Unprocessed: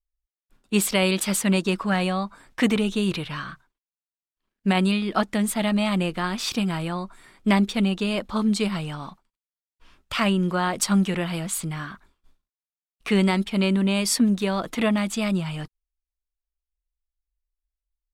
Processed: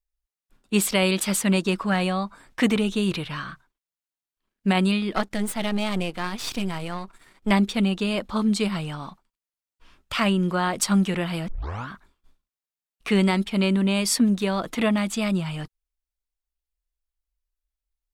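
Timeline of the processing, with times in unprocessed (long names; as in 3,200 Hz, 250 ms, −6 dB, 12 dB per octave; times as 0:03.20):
0:05.16–0:07.51: gain on one half-wave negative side −12 dB
0:11.48: tape start 0.41 s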